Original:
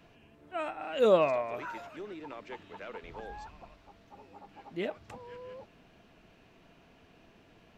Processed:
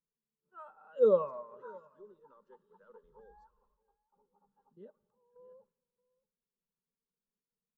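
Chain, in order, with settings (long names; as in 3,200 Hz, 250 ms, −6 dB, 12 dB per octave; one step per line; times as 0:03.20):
noise gate −56 dBFS, range −9 dB
0:03.46–0:04.16: parametric band 140 Hz −10 dB 1.6 octaves
0:04.73–0:05.36: output level in coarse steps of 19 dB
phaser with its sweep stopped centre 460 Hz, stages 8
single-tap delay 624 ms −17 dB
convolution reverb RT60 2.3 s, pre-delay 29 ms, DRR 18 dB
every bin expanded away from the loudest bin 1.5 to 1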